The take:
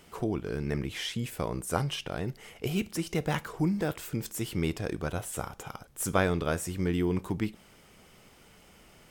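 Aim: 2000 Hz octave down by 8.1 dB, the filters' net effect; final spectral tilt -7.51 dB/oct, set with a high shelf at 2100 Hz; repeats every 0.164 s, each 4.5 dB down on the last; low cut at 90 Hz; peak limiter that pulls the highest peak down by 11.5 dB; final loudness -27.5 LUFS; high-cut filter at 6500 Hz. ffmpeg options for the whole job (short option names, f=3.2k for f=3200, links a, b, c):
-af "highpass=90,lowpass=6.5k,equalizer=f=2k:t=o:g=-7,highshelf=f=2.1k:g=-7.5,alimiter=limit=-22.5dB:level=0:latency=1,aecho=1:1:164|328|492|656|820|984|1148|1312|1476:0.596|0.357|0.214|0.129|0.0772|0.0463|0.0278|0.0167|0.01,volume=6.5dB"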